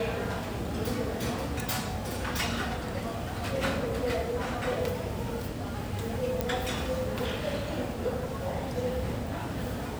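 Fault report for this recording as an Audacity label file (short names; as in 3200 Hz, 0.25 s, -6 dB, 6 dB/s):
6.410000	6.410000	pop -13 dBFS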